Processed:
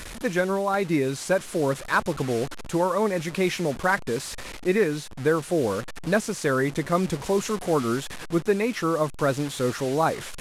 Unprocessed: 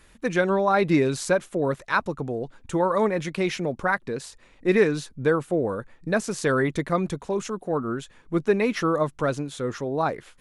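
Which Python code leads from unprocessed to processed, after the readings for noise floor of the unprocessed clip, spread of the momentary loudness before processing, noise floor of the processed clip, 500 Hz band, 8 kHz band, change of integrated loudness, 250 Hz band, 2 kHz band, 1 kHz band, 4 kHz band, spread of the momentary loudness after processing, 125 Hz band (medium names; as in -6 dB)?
-56 dBFS, 9 LU, -38 dBFS, -0.5 dB, +3.5 dB, 0.0 dB, -0.5 dB, 0.0 dB, 0.0 dB, +3.0 dB, 5 LU, +0.5 dB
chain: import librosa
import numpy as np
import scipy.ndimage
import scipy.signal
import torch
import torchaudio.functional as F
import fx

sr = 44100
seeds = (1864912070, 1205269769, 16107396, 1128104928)

y = fx.delta_mod(x, sr, bps=64000, step_db=-32.5)
y = fx.rider(y, sr, range_db=4, speed_s=0.5)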